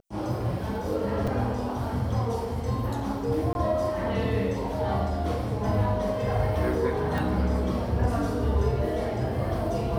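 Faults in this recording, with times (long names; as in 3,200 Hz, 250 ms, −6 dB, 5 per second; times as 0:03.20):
0:01.27: drop-out 4.5 ms
0:03.53–0:03.55: drop-out 21 ms
0:07.18: click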